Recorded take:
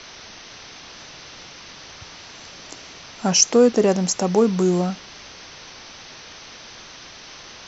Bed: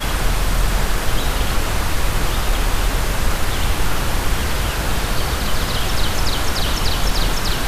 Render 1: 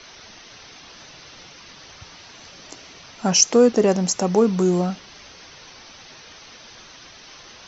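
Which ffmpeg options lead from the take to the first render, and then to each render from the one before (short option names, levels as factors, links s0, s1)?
-af "afftdn=nr=6:nf=-42"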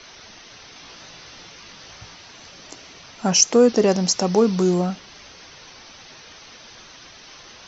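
-filter_complex "[0:a]asettb=1/sr,asplit=3[s0][s1][s2];[s0]atrim=end=0.744[s3];[s1]atrim=start=0.74:end=2.14,asetpts=PTS-STARTPTS,afade=t=in:d=0.004:c=qsin,afade=t=out:st=1.396:d=0.004:c=qsin,asplit=2[s4][s5];[s5]adelay=18,volume=0.562[s6];[s4][s6]amix=inputs=2:normalize=0,atrim=end_sample=61740[s7];[s2]atrim=start=2.136[s8];[s3][s7]acrossfade=d=0.004:c1=hsin:c2=qsin[s9];[s9][s8]acrossfade=d=0.004:c1=qsin:c2=hsin,asettb=1/sr,asplit=3[s10][s11][s12];[s10]atrim=end=3.684[s13];[s11]atrim=start=3.68:end=4.74,asetpts=PTS-STARTPTS,afade=t=in:d=0.004:c=qsin,afade=t=out:st=1.056:d=0.004:c=qsin,lowpass=f=5200:t=q:w=2.1[s14];[s12]atrim=start=4.736[s15];[s13][s14]acrossfade=d=0.004:c1=hsin:c2=qsin[s16];[s16][s15]acrossfade=d=0.004:c1=qsin:c2=hsin"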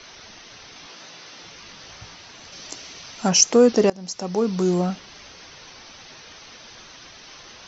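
-filter_complex "[0:a]asettb=1/sr,asplit=3[s0][s1][s2];[s0]atrim=end=0.864[s3];[s1]atrim=start=0.86:end=1.43,asetpts=PTS-STARTPTS,afade=t=in:d=0.004:c=qsin,afade=t=out:st=0.566:d=0.004:c=qsin,highpass=180[s4];[s2]atrim=start=1.426[s5];[s3][s4]acrossfade=d=0.004:c1=hsin:c2=qsin[s6];[s6][s5]acrossfade=d=0.004:c1=qsin:c2=hsin,asettb=1/sr,asplit=3[s7][s8][s9];[s7]atrim=end=2.524[s10];[s8]atrim=start=2.52:end=3.29,asetpts=PTS-STARTPTS,afade=t=in:d=0.004:c=qsin,afade=t=out:st=0.766:d=0.004:c=qsin,highshelf=f=3400:g=7.5[s11];[s9]atrim=start=3.286[s12];[s10][s11]acrossfade=d=0.004:c1=hsin:c2=qsin[s13];[s13][s12]acrossfade=d=0.004:c1=qsin:c2=hsin,asplit=2[s14][s15];[s14]atrim=end=3.9,asetpts=PTS-STARTPTS,afade=t=out:st=3.896:d=0.004:c=hsin:silence=0.0668344[s16];[s15]atrim=start=3.9,asetpts=PTS-STARTPTS,afade=t=in:d=0.98:silence=0.0668344[s17];[s16][s17]concat=n=2:v=0:a=1"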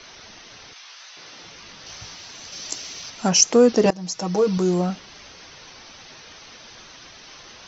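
-filter_complex "[0:a]asettb=1/sr,asplit=3[s0][s1][s2];[s0]atrim=end=0.734[s3];[s1]atrim=start=0.73:end=1.17,asetpts=PTS-STARTPTS,afade=t=in:d=0.004:c=qsin,afade=t=out:st=0.436:d=0.004:c=qsin,highpass=1100[s4];[s2]atrim=start=1.166[s5];[s3][s4]acrossfade=d=0.004:c1=hsin:c2=qsin[s6];[s6][s5]acrossfade=d=0.004:c1=qsin:c2=hsin,asettb=1/sr,asplit=3[s7][s8][s9];[s7]atrim=end=1.864[s10];[s8]atrim=start=1.86:end=3.1,asetpts=PTS-STARTPTS,afade=t=in:d=0.004:c=qsin,afade=t=out:st=1.236:d=0.004:c=qsin,aemphasis=mode=production:type=50kf[s11];[s9]atrim=start=3.096[s12];[s10][s11]acrossfade=d=0.004:c1=hsin:c2=qsin[s13];[s13][s12]acrossfade=d=0.004:c1=qsin:c2=hsin,asettb=1/sr,asplit=3[s14][s15][s16];[s14]atrim=end=3.854[s17];[s15]atrim=start=3.85:end=4.58,asetpts=PTS-STARTPTS,afade=t=in:d=0.004:c=qsin,afade=t=out:st=0.726:d=0.004:c=qsin,aecho=1:1:6.3:0.98,atrim=end_sample=32193[s18];[s16]atrim=start=4.576[s19];[s17][s18]acrossfade=d=0.004:c1=hsin:c2=qsin[s20];[s20][s19]acrossfade=d=0.004:c1=qsin:c2=hsin"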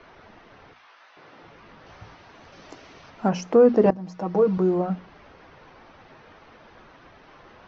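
-af "lowpass=1400,bandreject=f=60:t=h:w=6,bandreject=f=120:t=h:w=6,bandreject=f=180:t=h:w=6,bandreject=f=240:t=h:w=6"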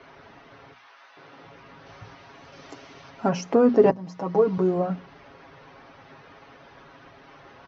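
-af "highpass=46,aecho=1:1:7.3:0.52"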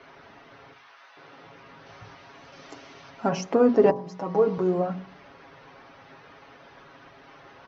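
-af "lowshelf=f=170:g=-3.5,bandreject=f=46.93:t=h:w=4,bandreject=f=93.86:t=h:w=4,bandreject=f=140.79:t=h:w=4,bandreject=f=187.72:t=h:w=4,bandreject=f=234.65:t=h:w=4,bandreject=f=281.58:t=h:w=4,bandreject=f=328.51:t=h:w=4,bandreject=f=375.44:t=h:w=4,bandreject=f=422.37:t=h:w=4,bandreject=f=469.3:t=h:w=4,bandreject=f=516.23:t=h:w=4,bandreject=f=563.16:t=h:w=4,bandreject=f=610.09:t=h:w=4,bandreject=f=657.02:t=h:w=4,bandreject=f=703.95:t=h:w=4,bandreject=f=750.88:t=h:w=4,bandreject=f=797.81:t=h:w=4,bandreject=f=844.74:t=h:w=4,bandreject=f=891.67:t=h:w=4,bandreject=f=938.6:t=h:w=4,bandreject=f=985.53:t=h:w=4,bandreject=f=1032.46:t=h:w=4,bandreject=f=1079.39:t=h:w=4,bandreject=f=1126.32:t=h:w=4,bandreject=f=1173.25:t=h:w=4"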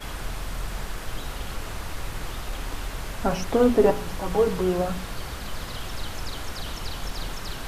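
-filter_complex "[1:a]volume=0.2[s0];[0:a][s0]amix=inputs=2:normalize=0"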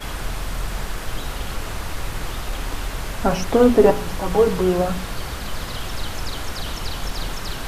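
-af "volume=1.78"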